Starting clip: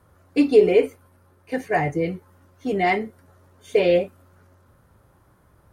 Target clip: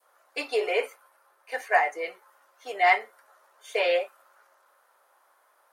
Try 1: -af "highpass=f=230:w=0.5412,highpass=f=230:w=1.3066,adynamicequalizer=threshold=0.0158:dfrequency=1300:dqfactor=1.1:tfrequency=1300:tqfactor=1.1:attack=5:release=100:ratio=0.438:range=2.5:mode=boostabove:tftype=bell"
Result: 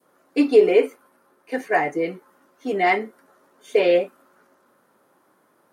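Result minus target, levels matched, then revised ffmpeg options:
250 Hz band +17.0 dB
-af "highpass=f=620:w=0.5412,highpass=f=620:w=1.3066,adynamicequalizer=threshold=0.0158:dfrequency=1300:dqfactor=1.1:tfrequency=1300:tqfactor=1.1:attack=5:release=100:ratio=0.438:range=2.5:mode=boostabove:tftype=bell"

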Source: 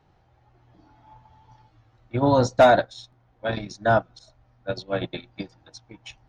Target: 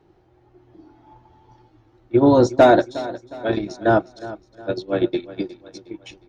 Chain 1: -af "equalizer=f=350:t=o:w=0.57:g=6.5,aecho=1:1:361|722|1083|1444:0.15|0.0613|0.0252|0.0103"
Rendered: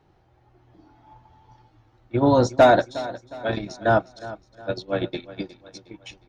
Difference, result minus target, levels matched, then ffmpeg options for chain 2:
250 Hz band -3.0 dB
-af "equalizer=f=350:t=o:w=0.57:g=17,aecho=1:1:361|722|1083|1444:0.15|0.0613|0.0252|0.0103"

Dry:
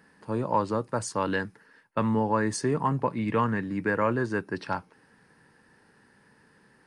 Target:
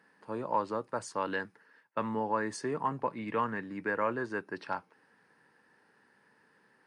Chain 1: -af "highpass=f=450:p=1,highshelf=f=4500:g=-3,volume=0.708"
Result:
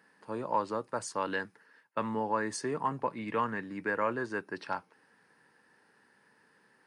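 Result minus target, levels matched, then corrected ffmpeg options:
8 kHz band +4.0 dB
-af "highpass=f=450:p=1,highshelf=f=4500:g=-9,volume=0.708"

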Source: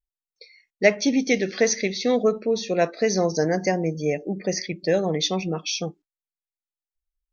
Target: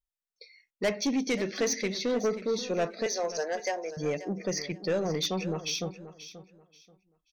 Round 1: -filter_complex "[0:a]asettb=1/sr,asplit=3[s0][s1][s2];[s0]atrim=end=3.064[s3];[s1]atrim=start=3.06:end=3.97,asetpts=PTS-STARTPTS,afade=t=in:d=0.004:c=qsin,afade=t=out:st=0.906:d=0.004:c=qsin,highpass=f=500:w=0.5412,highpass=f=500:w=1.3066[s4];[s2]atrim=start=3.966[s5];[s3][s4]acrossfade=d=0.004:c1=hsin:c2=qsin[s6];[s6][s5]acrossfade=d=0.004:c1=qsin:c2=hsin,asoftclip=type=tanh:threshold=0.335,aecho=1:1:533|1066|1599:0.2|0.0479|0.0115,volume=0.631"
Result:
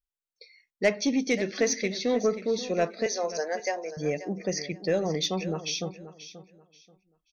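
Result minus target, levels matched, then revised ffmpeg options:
saturation: distortion -10 dB
-filter_complex "[0:a]asettb=1/sr,asplit=3[s0][s1][s2];[s0]atrim=end=3.064[s3];[s1]atrim=start=3.06:end=3.97,asetpts=PTS-STARTPTS,afade=t=in:d=0.004:c=qsin,afade=t=out:st=0.906:d=0.004:c=qsin,highpass=f=500:w=0.5412,highpass=f=500:w=1.3066[s4];[s2]atrim=start=3.966[s5];[s3][s4]acrossfade=d=0.004:c1=hsin:c2=qsin[s6];[s6][s5]acrossfade=d=0.004:c1=qsin:c2=hsin,asoftclip=type=tanh:threshold=0.126,aecho=1:1:533|1066|1599:0.2|0.0479|0.0115,volume=0.631"

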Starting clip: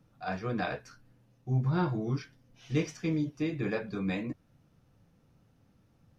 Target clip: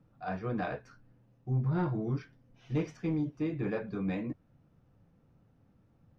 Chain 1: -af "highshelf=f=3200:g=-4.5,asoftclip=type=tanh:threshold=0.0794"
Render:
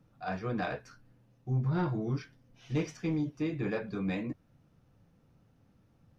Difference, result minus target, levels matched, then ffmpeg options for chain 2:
8 kHz band +8.5 dB
-af "highshelf=f=3200:g=-15.5,asoftclip=type=tanh:threshold=0.0794"

